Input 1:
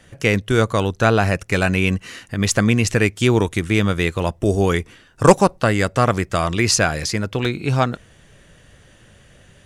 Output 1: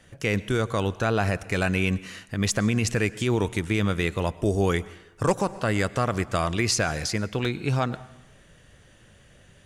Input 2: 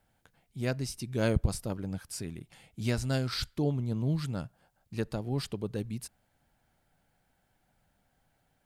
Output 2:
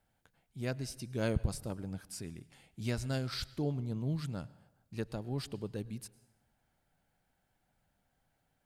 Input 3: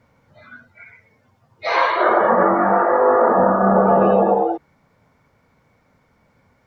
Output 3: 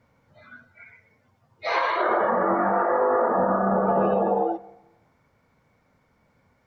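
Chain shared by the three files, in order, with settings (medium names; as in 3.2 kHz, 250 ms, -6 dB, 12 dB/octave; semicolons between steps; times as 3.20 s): plate-style reverb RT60 0.92 s, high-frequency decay 0.8×, pre-delay 90 ms, DRR 20 dB; peak limiter -8 dBFS; trim -5 dB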